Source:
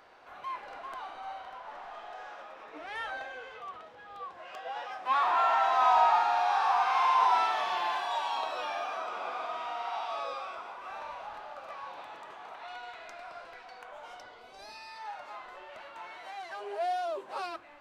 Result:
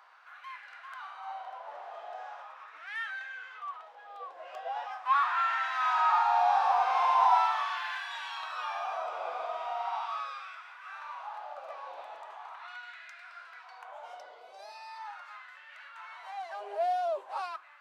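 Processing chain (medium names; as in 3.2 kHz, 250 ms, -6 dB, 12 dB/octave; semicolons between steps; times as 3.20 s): LFO high-pass sine 0.4 Hz 560–1700 Hz; trim -4 dB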